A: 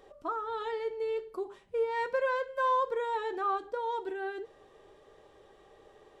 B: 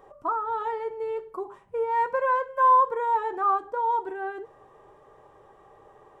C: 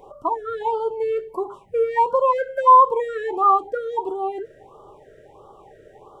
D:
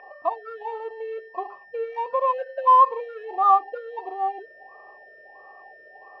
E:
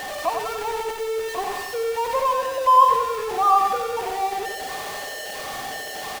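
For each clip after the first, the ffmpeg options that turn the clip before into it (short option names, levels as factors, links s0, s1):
-af "equalizer=f=125:t=o:w=1:g=8,equalizer=f=1000:t=o:w=1:g=11,equalizer=f=4000:t=o:w=1:g=-10"
-af "afftfilt=real='re*(1-between(b*sr/1024,920*pow(2100/920,0.5+0.5*sin(2*PI*1.5*pts/sr))/1.41,920*pow(2100/920,0.5+0.5*sin(2*PI*1.5*pts/sr))*1.41))':imag='im*(1-between(b*sr/1024,920*pow(2100/920,0.5+0.5*sin(2*PI*1.5*pts/sr))/1.41,920*pow(2100/920,0.5+0.5*sin(2*PI*1.5*pts/sr))*1.41))':win_size=1024:overlap=0.75,volume=2.37"
-filter_complex "[0:a]aeval=exprs='val(0)+0.0398*sin(2*PI*1800*n/s)':c=same,adynamicsmooth=sensitivity=2:basefreq=2400,asplit=3[s0][s1][s2];[s0]bandpass=f=730:t=q:w=8,volume=1[s3];[s1]bandpass=f=1090:t=q:w=8,volume=0.501[s4];[s2]bandpass=f=2440:t=q:w=8,volume=0.355[s5];[s3][s4][s5]amix=inputs=3:normalize=0,volume=2.11"
-af "aeval=exprs='val(0)+0.5*0.0531*sgn(val(0))':c=same,aecho=1:1:92|184|276|368|460|552|644:0.562|0.309|0.17|0.0936|0.0515|0.0283|0.0156,volume=0.841"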